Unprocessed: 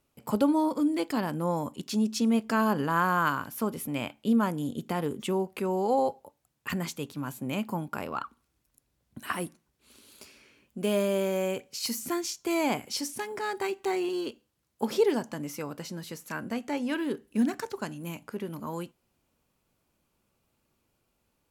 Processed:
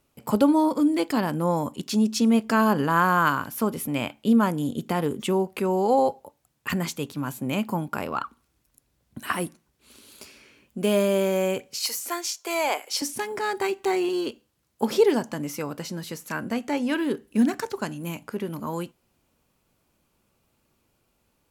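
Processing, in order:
0:11.79–0:13.02: high-pass filter 460 Hz 24 dB per octave
level +5 dB

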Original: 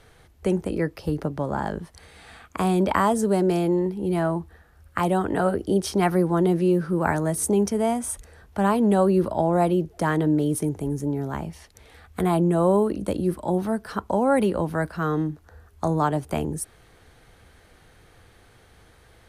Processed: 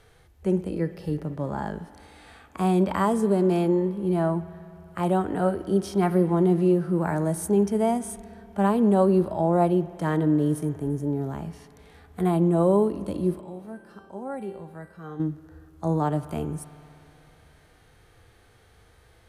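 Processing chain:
0:13.41–0:15.20: tuned comb filter 390 Hz, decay 0.72 s, mix 80%
spring reverb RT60 3.3 s, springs 60 ms, chirp 75 ms, DRR 17 dB
harmonic and percussive parts rebalanced percussive −11 dB

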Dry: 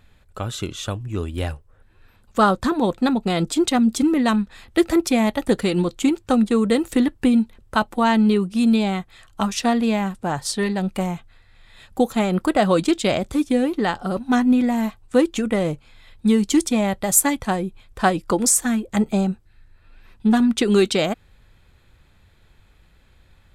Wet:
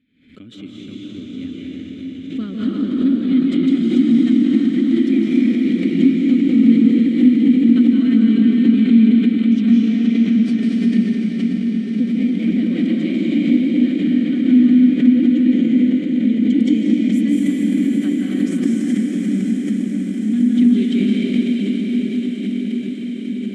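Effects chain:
formant filter i
parametric band 190 Hz +8.5 dB 1.7 octaves
feedback delay with all-pass diffusion 704 ms, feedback 77%, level −7 dB
convolution reverb RT60 4.8 s, pre-delay 140 ms, DRR −6 dB
background raised ahead of every attack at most 94 dB per second
level −1.5 dB

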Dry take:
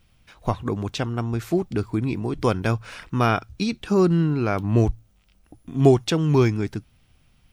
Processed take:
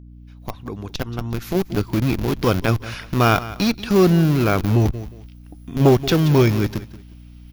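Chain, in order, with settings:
fade in at the beginning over 1.89 s
in parallel at −5 dB: comparator with hysteresis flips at −24 dBFS
on the sum: parametric band 8,300 Hz −14 dB 0.47 octaves
on a send: repeating echo 179 ms, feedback 27%, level −17.5 dB
on the sum: mains hum 60 Hz, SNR 23 dB
high-shelf EQ 3,400 Hz +9.5 dB
saturating transformer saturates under 390 Hz
level +3 dB

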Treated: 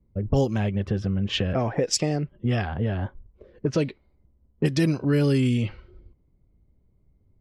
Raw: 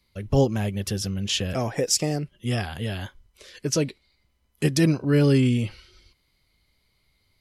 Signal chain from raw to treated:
low-pass that shuts in the quiet parts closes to 360 Hz, open at −15.5 dBFS
downward compressor 2.5 to 1, threshold −32 dBFS, peak gain reduction 11.5 dB
level +8.5 dB

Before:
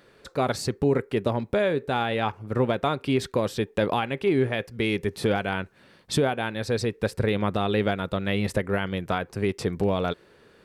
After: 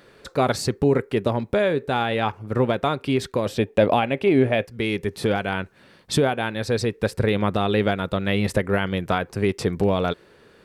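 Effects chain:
0:03.46–0:04.65: graphic EQ with 15 bands 100 Hz +5 dB, 250 Hz +6 dB, 630 Hz +10 dB, 2,500 Hz +5 dB
speech leveller within 4 dB 2 s
level +2 dB

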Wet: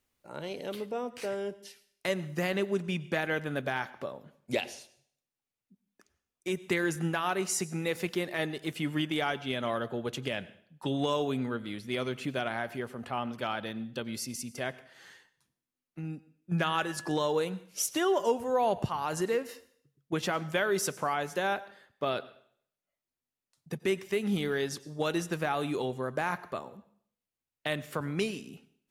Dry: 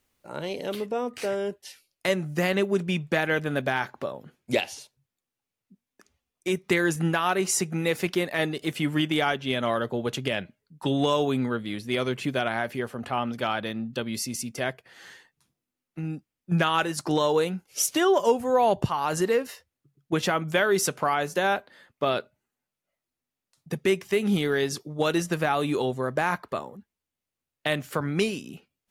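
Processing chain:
0:16.58–0:17.13: steady tone 1,700 Hz −39 dBFS
on a send: convolution reverb RT60 0.60 s, pre-delay 82 ms, DRR 18 dB
on the sum: level −6 dB

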